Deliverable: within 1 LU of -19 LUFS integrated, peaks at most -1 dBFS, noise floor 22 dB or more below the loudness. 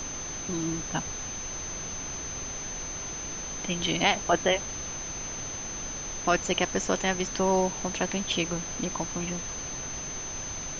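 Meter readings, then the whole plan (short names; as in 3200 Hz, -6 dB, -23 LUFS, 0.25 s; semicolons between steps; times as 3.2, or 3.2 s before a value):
steady tone 6200 Hz; tone level -35 dBFS; noise floor -36 dBFS; noise floor target -52 dBFS; loudness -29.5 LUFS; peak -8.0 dBFS; loudness target -19.0 LUFS
-> notch 6200 Hz, Q 30; noise print and reduce 16 dB; gain +10.5 dB; limiter -1 dBFS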